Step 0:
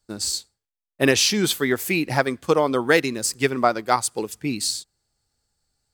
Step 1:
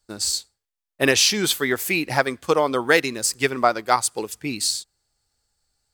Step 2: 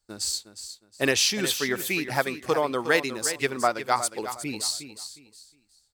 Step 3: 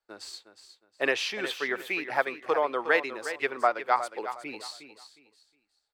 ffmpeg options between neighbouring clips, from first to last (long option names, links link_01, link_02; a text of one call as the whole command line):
ffmpeg -i in.wav -af "equalizer=frequency=180:width_type=o:width=2.5:gain=-6,volume=2dB" out.wav
ffmpeg -i in.wav -af "aecho=1:1:361|722|1083:0.282|0.0761|0.0205,volume=-5dB" out.wav
ffmpeg -i in.wav -filter_complex "[0:a]acrossover=split=360 3100:gain=0.1 1 0.1[link_01][link_02][link_03];[link_01][link_02][link_03]amix=inputs=3:normalize=0" out.wav